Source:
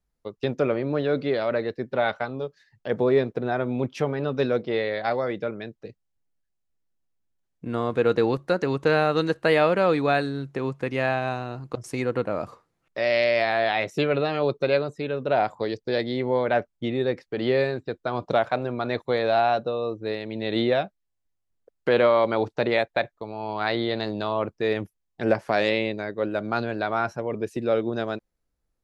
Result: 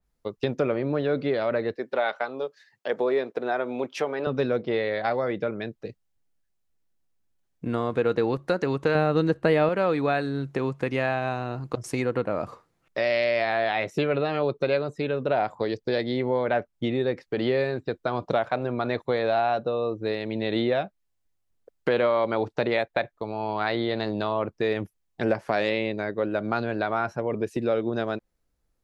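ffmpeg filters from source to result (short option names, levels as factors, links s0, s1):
-filter_complex "[0:a]asettb=1/sr,asplit=3[s0][s1][s2];[s0]atrim=end=1.764[s3];[s1]atrim=start=1.76:end=4.27,asetpts=PTS-STARTPTS,afade=t=in:d=0.004:c=qsin,afade=t=out:st=2.506:d=0.004:c=qsin,highpass=390[s4];[s2]atrim=start=4.266[s5];[s3][s4]acrossfade=d=0.004:c1=hsin:c2=qsin[s6];[s6][s5]acrossfade=d=0.004:c1=qsin:c2=hsin,asettb=1/sr,asplit=3[s7][s8][s9];[s7]atrim=end=8.954[s10];[s8]atrim=start=8.95:end=9.69,asetpts=PTS-STARTPTS,afade=t=in:d=0.004:c=qsin,afade=t=out:st=0.736:d=0.004:c=qsin,lowshelf=f=450:g=9.5[s11];[s9]atrim=start=9.686[s12];[s10][s11]acrossfade=d=0.004:c1=hsin:c2=qsin[s13];[s13][s12]acrossfade=d=0.004:c1=qsin:c2=hsin,acompressor=threshold=0.0398:ratio=2,adynamicequalizer=threshold=0.00501:dfrequency=3300:dqfactor=0.7:tfrequency=3300:tqfactor=0.7:attack=5:release=100:ratio=0.375:range=2.5:mode=cutabove:tftype=highshelf,volume=1.5"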